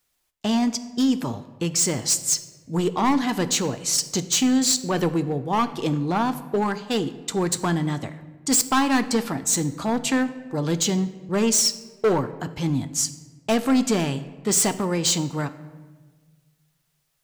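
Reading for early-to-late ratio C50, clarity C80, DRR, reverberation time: 14.0 dB, 15.5 dB, 10.5 dB, 1.4 s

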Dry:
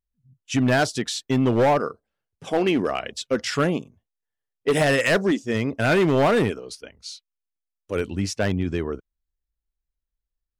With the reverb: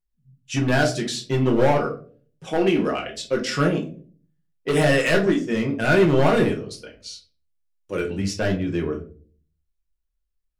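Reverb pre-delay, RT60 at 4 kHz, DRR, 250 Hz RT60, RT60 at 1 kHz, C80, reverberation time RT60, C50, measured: 6 ms, 0.30 s, -0.5 dB, 0.65 s, 0.30 s, 16.5 dB, 0.45 s, 11.0 dB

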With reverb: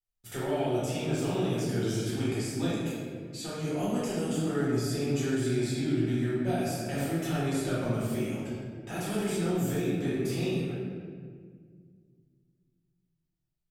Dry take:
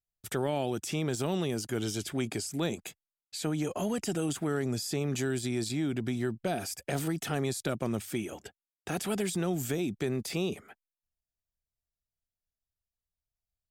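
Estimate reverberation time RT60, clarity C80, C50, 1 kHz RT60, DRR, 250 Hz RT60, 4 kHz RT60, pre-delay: 1.9 s, 0.5 dB, -2.5 dB, 1.6 s, -10.5 dB, 2.8 s, 1.1 s, 4 ms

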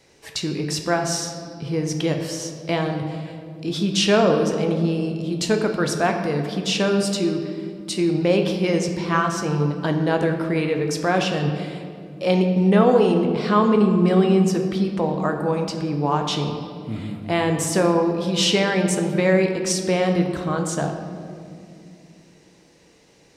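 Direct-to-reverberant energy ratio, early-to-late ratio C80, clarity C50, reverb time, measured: 4.0 dB, 7.5 dB, 6.0 dB, 2.4 s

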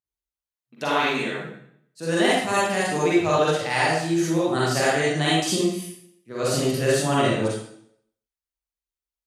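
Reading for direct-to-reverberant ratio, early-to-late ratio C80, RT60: -7.5 dB, 2.0 dB, 0.65 s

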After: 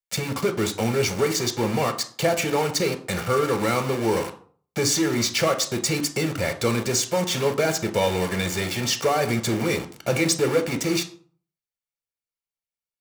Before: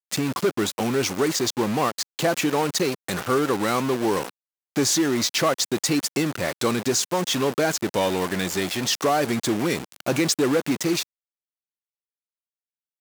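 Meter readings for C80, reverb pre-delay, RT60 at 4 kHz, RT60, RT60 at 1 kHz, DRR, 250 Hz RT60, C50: 17.5 dB, 3 ms, 0.30 s, 0.50 s, 0.50 s, 7.0 dB, 0.50 s, 13.5 dB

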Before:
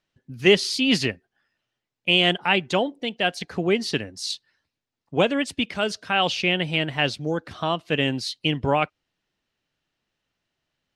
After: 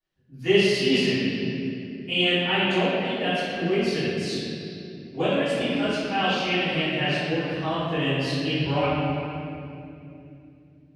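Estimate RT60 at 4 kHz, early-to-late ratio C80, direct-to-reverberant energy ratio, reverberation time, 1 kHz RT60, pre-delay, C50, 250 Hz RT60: 1.9 s, -2.0 dB, -18.0 dB, 2.8 s, 2.3 s, 3 ms, -4.5 dB, 4.4 s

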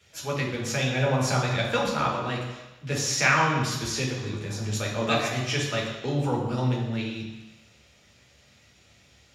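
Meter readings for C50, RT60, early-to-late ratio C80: 3.0 dB, 1.1 s, 5.5 dB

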